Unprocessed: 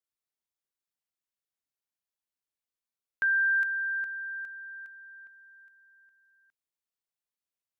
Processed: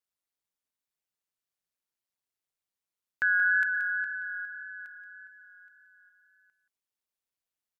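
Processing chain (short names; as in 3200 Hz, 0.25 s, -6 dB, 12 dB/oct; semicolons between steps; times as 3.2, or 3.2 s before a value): wow and flutter 28 cents; ring modulator 94 Hz; on a send: echo 0.178 s -11 dB; on the sum: gain +3.5 dB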